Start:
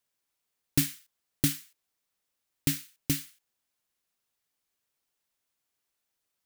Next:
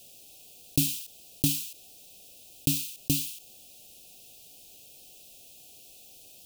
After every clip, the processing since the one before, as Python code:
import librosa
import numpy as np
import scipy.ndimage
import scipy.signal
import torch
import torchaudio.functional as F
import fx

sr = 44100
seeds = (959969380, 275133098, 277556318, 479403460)

y = scipy.signal.sosfilt(scipy.signal.cheby1(5, 1.0, [780.0, 2500.0], 'bandstop', fs=sr, output='sos'), x)
y = fx.env_flatten(y, sr, amount_pct=50)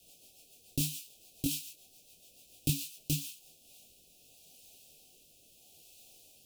y = fx.rotary_switch(x, sr, hz=7.0, then_hz=0.75, switch_at_s=3.06)
y = fx.detune_double(y, sr, cents=26)